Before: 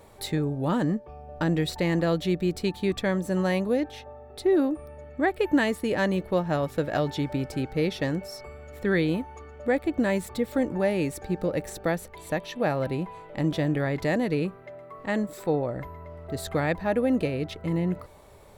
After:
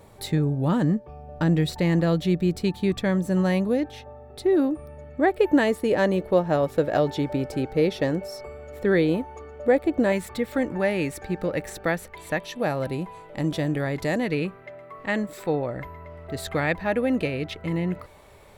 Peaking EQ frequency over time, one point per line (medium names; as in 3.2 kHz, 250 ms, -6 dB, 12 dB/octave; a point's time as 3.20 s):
peaking EQ +6 dB 1.5 oct
140 Hz
from 5.18 s 500 Hz
from 10.12 s 1.9 kHz
from 12.43 s 9.4 kHz
from 14.19 s 2.3 kHz